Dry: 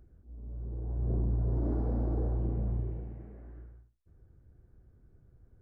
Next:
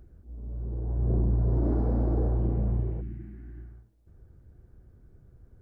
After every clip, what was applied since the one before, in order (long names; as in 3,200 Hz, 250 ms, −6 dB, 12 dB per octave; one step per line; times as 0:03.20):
coupled-rooms reverb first 0.31 s, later 3.8 s, from −20 dB, DRR 18 dB
healed spectral selection 0:03.04–0:03.74, 370–1,400 Hz after
level +5.5 dB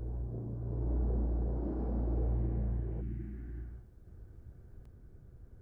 downward compressor 10 to 1, threshold −31 dBFS, peak gain reduction 11 dB
backwards echo 759 ms −3 dB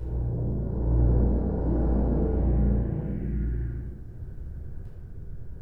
rectangular room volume 690 cubic metres, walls mixed, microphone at 4.8 metres